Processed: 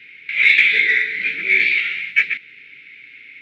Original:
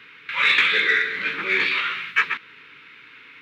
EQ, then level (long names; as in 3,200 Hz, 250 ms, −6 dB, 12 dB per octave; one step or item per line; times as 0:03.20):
Butterworth band-reject 970 Hz, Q 0.67
low-shelf EQ 81 Hz +5 dB
parametric band 2,200 Hz +13.5 dB 0.54 octaves
−3.5 dB